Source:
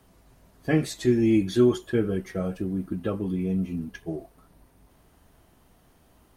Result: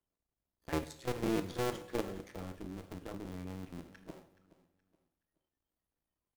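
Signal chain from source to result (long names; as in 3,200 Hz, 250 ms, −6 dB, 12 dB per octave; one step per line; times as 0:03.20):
sub-harmonics by changed cycles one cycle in 2, muted
noise reduction from a noise print of the clip's start 19 dB
output level in coarse steps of 12 dB
on a send: repeating echo 423 ms, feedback 33%, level −18 dB
on the sum: coupled-rooms reverb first 0.62 s, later 1.9 s, DRR 9 dB
level −8 dB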